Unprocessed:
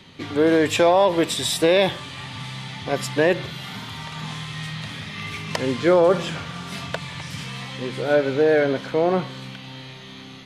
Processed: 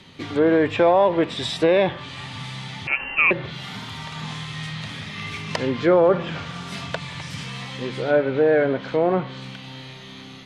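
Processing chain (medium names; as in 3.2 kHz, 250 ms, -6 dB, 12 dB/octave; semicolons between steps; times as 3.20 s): low-pass that closes with the level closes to 2.3 kHz, closed at -17.5 dBFS; 2.87–3.31 s: frequency inversion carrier 2.9 kHz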